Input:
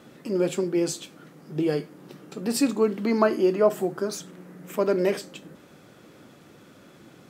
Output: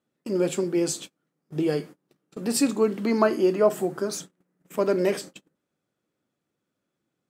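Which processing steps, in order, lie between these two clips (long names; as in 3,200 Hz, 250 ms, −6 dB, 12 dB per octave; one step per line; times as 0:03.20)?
noise gate −39 dBFS, range −30 dB
parametric band 8,600 Hz +4 dB 0.94 octaves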